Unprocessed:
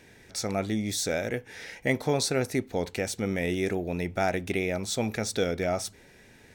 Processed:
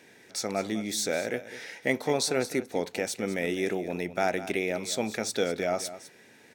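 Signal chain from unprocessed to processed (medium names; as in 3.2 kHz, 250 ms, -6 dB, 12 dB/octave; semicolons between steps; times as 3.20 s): high-pass 210 Hz 12 dB/octave; delay 204 ms -14 dB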